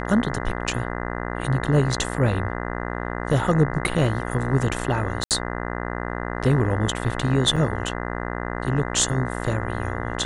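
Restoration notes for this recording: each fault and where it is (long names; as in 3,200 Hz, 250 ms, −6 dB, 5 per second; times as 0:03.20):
mains buzz 60 Hz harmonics 34 −29 dBFS
0:05.24–0:05.31: drop-out 68 ms
0:07.56–0:07.57: drop-out 5.6 ms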